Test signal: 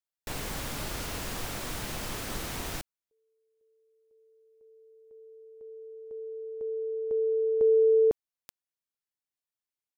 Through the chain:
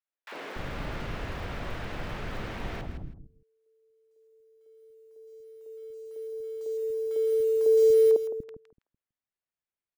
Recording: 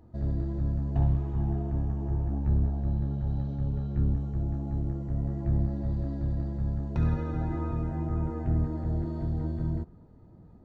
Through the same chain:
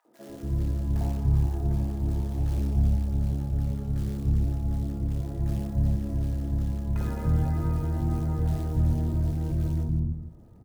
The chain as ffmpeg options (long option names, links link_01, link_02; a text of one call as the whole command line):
ffmpeg -i in.wav -filter_complex "[0:a]lowpass=2200,asplit=2[link_01][link_02];[link_02]aecho=0:1:162|324:0.335|0.0569[link_03];[link_01][link_03]amix=inputs=2:normalize=0,acrusher=bits=8:mode=log:mix=0:aa=0.000001,acrossover=split=280|950[link_04][link_05][link_06];[link_05]adelay=50[link_07];[link_04]adelay=290[link_08];[link_08][link_07][link_06]amix=inputs=3:normalize=0,volume=2.5dB" out.wav